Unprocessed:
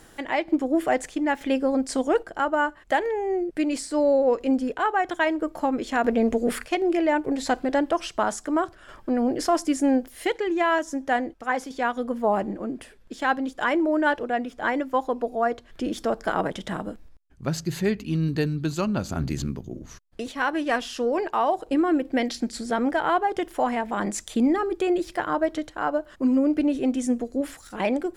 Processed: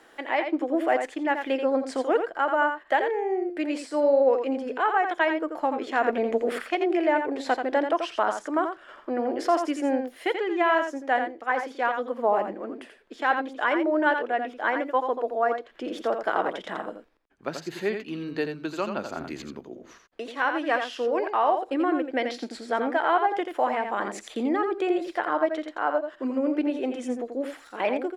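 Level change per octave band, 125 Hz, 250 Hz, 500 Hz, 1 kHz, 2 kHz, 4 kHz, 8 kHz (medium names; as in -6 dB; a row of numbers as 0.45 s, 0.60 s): -16.0 dB, -5.0 dB, 0.0 dB, +0.5 dB, +0.5 dB, -2.5 dB, under -10 dB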